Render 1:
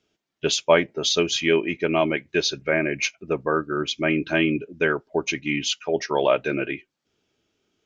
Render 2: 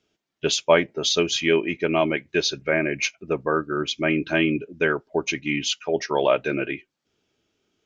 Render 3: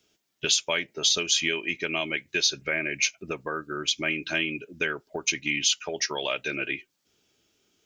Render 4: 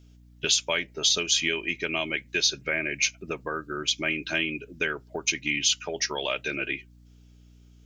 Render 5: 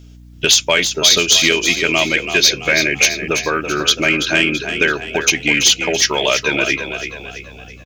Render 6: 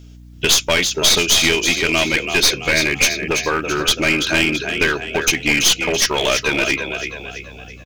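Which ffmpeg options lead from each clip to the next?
-af anull
-filter_complex "[0:a]acrossover=split=800|1800[a][b][c];[a]acompressor=threshold=-34dB:ratio=4[d];[b]acompressor=threshold=-42dB:ratio=4[e];[c]acompressor=threshold=-27dB:ratio=4[f];[d][e][f]amix=inputs=3:normalize=0,crystalizer=i=2.5:c=0"
-af "aeval=exprs='val(0)+0.00251*(sin(2*PI*60*n/s)+sin(2*PI*2*60*n/s)/2+sin(2*PI*3*60*n/s)/3+sin(2*PI*4*60*n/s)/4+sin(2*PI*5*60*n/s)/5)':c=same"
-filter_complex "[0:a]aeval=exprs='0.398*sin(PI/2*1.78*val(0)/0.398)':c=same,asplit=6[a][b][c][d][e][f];[b]adelay=333,afreqshift=35,volume=-8.5dB[g];[c]adelay=666,afreqshift=70,volume=-15.2dB[h];[d]adelay=999,afreqshift=105,volume=-22dB[i];[e]adelay=1332,afreqshift=140,volume=-28.7dB[j];[f]adelay=1665,afreqshift=175,volume=-35.5dB[k];[a][g][h][i][j][k]amix=inputs=6:normalize=0,volume=4dB"
-af "aeval=exprs='clip(val(0),-1,0.158)':c=same"

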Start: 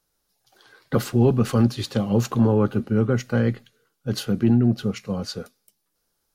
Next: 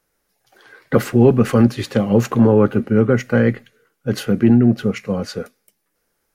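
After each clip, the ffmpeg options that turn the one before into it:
-af "equalizer=f=250:t=o:w=1:g=3,equalizer=f=500:t=o:w=1:g=5,equalizer=f=2k:t=o:w=1:g=9,equalizer=f=4k:t=o:w=1:g=-5,volume=2.5dB"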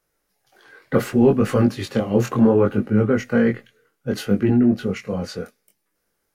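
-af "flanger=delay=19.5:depth=3.7:speed=0.67"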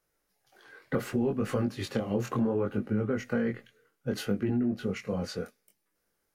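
-af "acompressor=threshold=-21dB:ratio=4,volume=-5dB"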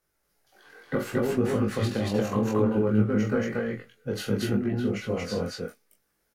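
-filter_complex "[0:a]asplit=2[a][b];[b]adelay=19,volume=-4.5dB[c];[a][c]amix=inputs=2:normalize=0,aecho=1:1:46.65|230.3:0.398|1"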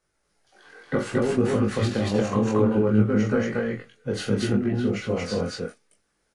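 -af "volume=3dB" -ar 22050 -c:a aac -b:a 48k

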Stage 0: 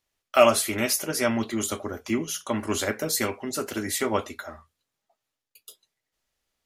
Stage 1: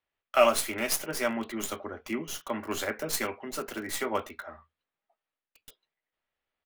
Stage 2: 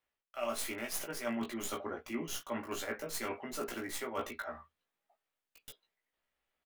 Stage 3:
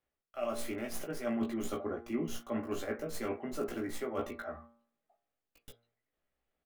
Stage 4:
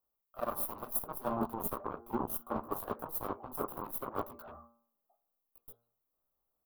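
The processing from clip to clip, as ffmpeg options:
-filter_complex "[0:a]lowshelf=f=270:g=-10.5,acrossover=split=190|3400[a][b][c];[a]asplit=2[d][e];[e]adelay=13,volume=-3dB[f];[d][f]amix=inputs=2:normalize=0[g];[c]acrusher=bits=4:dc=4:mix=0:aa=0.000001[h];[g][b][h]amix=inputs=3:normalize=0,volume=-2.5dB"
-filter_complex "[0:a]areverse,acompressor=threshold=-35dB:ratio=12,areverse,asplit=2[a][b];[b]adelay=17,volume=-2.5dB[c];[a][c]amix=inputs=2:normalize=0,volume=-1dB"
-af "tiltshelf=f=970:g=6.5,bandreject=f=950:w=11,bandreject=f=116.8:t=h:w=4,bandreject=f=233.6:t=h:w=4,bandreject=f=350.4:t=h:w=4,bandreject=f=467.2:t=h:w=4,bandreject=f=584:t=h:w=4,bandreject=f=700.8:t=h:w=4,bandreject=f=817.6:t=h:w=4,bandreject=f=934.4:t=h:w=4,bandreject=f=1.0512k:t=h:w=4,bandreject=f=1.168k:t=h:w=4,bandreject=f=1.2848k:t=h:w=4,bandreject=f=1.4016k:t=h:w=4,bandreject=f=1.5184k:t=h:w=4,bandreject=f=1.6352k:t=h:w=4,bandreject=f=1.752k:t=h:w=4,bandreject=f=1.8688k:t=h:w=4,bandreject=f=1.9856k:t=h:w=4,bandreject=f=2.1024k:t=h:w=4,bandreject=f=2.2192k:t=h:w=4,bandreject=f=2.336k:t=h:w=4"
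-af "aeval=exprs='0.0794*(cos(1*acos(clip(val(0)/0.0794,-1,1)))-cos(1*PI/2))+0.00891*(cos(3*acos(clip(val(0)/0.0794,-1,1)))-cos(3*PI/2))+0.0141*(cos(7*acos(clip(val(0)/0.0794,-1,1)))-cos(7*PI/2))':c=same,aexciter=amount=8.4:drive=9.3:freq=10k,highshelf=f=1.5k:t=q:w=3:g=-10"

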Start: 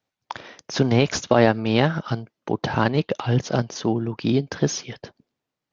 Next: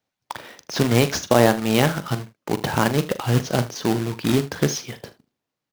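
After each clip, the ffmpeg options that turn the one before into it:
-af "acrusher=bits=2:mode=log:mix=0:aa=0.000001,aecho=1:1:41|77:0.224|0.133"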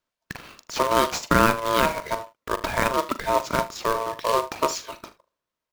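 -af "aeval=exprs='val(0)*sin(2*PI*790*n/s)':c=same"

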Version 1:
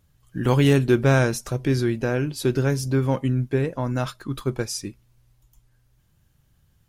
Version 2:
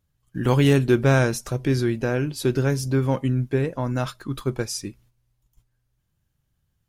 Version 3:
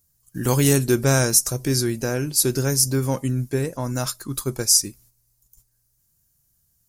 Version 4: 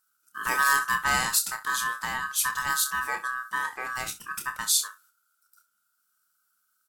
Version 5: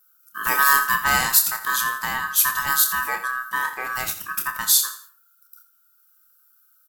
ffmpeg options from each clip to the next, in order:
-af "agate=range=-10dB:threshold=-54dB:ratio=16:detection=peak"
-af "aexciter=amount=7.4:drive=4.8:freq=4.7k,volume=-1dB"
-af "aecho=1:1:28|65:0.447|0.168,aeval=exprs='val(0)*sin(2*PI*1400*n/s)':c=same,volume=-4.5dB"
-af "aecho=1:1:84|168|252:0.224|0.0716|0.0229,aexciter=amount=2.7:drive=8.2:freq=12k,volume=4.5dB"

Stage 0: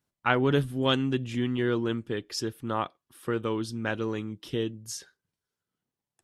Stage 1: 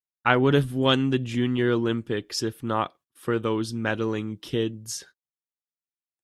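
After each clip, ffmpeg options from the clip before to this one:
-af "agate=range=-31dB:threshold=-52dB:ratio=16:detection=peak,volume=4dB"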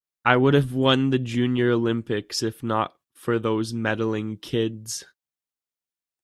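-af "adynamicequalizer=threshold=0.02:dfrequency=1600:dqfactor=0.7:tfrequency=1600:tqfactor=0.7:attack=5:release=100:ratio=0.375:range=2:mode=cutabove:tftype=highshelf,volume=2dB"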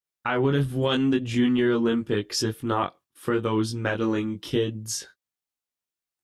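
-af "flanger=delay=19:depth=2.9:speed=0.83,alimiter=limit=-17.5dB:level=0:latency=1:release=152,volume=4dB"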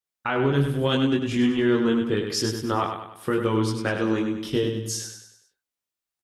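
-af "aecho=1:1:99|198|297|396|495:0.473|0.218|0.1|0.0461|0.0212"

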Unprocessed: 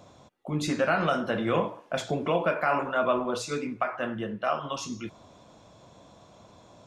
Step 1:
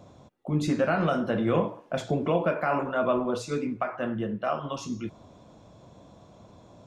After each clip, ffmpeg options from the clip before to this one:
-af "tiltshelf=f=650:g=4.5"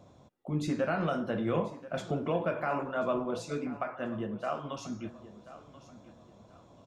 -af "aecho=1:1:1035|2070|3105:0.15|0.0464|0.0144,volume=-5.5dB"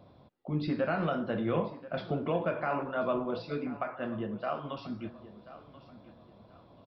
-af "aresample=11025,aresample=44100"

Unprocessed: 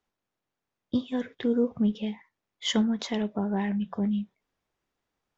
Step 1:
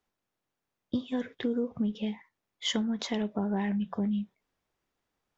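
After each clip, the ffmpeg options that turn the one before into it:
-af "acompressor=threshold=-26dB:ratio=6"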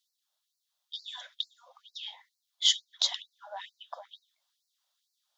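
-af "highshelf=f=2.9k:t=q:w=3:g=7,afftfilt=real='re*gte(b*sr/1024,510*pow(4100/510,0.5+0.5*sin(2*PI*2.2*pts/sr)))':imag='im*gte(b*sr/1024,510*pow(4100/510,0.5+0.5*sin(2*PI*2.2*pts/sr)))':win_size=1024:overlap=0.75"

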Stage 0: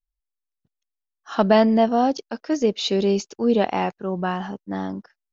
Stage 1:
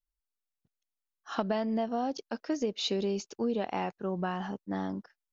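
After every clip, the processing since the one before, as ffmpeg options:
-af "acompressor=threshold=-22dB:ratio=6,volume=-5dB"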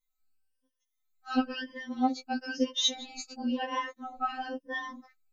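-af "afftfilt=real='re*pow(10,18/40*sin(2*PI*(1.2*log(max(b,1)*sr/1024/100)/log(2)-(1)*(pts-256)/sr)))':imag='im*pow(10,18/40*sin(2*PI*(1.2*log(max(b,1)*sr/1024/100)/log(2)-(1)*(pts-256)/sr)))':win_size=1024:overlap=0.75,afftfilt=real='re*3.46*eq(mod(b,12),0)':imag='im*3.46*eq(mod(b,12),0)':win_size=2048:overlap=0.75,volume=3.5dB"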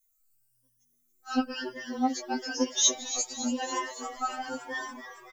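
-filter_complex "[0:a]asplit=2[a][b];[b]asplit=7[c][d][e][f][g][h][i];[c]adelay=281,afreqshift=120,volume=-12dB[j];[d]adelay=562,afreqshift=240,volume=-16dB[k];[e]adelay=843,afreqshift=360,volume=-20dB[l];[f]adelay=1124,afreqshift=480,volume=-24dB[m];[g]adelay=1405,afreqshift=600,volume=-28.1dB[n];[h]adelay=1686,afreqshift=720,volume=-32.1dB[o];[i]adelay=1967,afreqshift=840,volume=-36.1dB[p];[j][k][l][m][n][o][p]amix=inputs=7:normalize=0[q];[a][q]amix=inputs=2:normalize=0,aexciter=amount=6.2:drive=3.6:freq=5.5k"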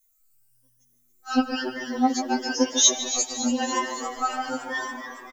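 -filter_complex "[0:a]asplit=2[a][b];[b]adelay=149,lowpass=f=2.4k:p=1,volume=-9dB,asplit=2[c][d];[d]adelay=149,lowpass=f=2.4k:p=1,volume=0.5,asplit=2[e][f];[f]adelay=149,lowpass=f=2.4k:p=1,volume=0.5,asplit=2[g][h];[h]adelay=149,lowpass=f=2.4k:p=1,volume=0.5,asplit=2[i][j];[j]adelay=149,lowpass=f=2.4k:p=1,volume=0.5,asplit=2[k][l];[l]adelay=149,lowpass=f=2.4k:p=1,volume=0.5[m];[a][c][e][g][i][k][m]amix=inputs=7:normalize=0,volume=5.5dB"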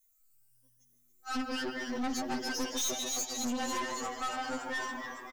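-af "aeval=exprs='(tanh(28.2*val(0)+0.4)-tanh(0.4))/28.2':c=same,volume=-2dB"

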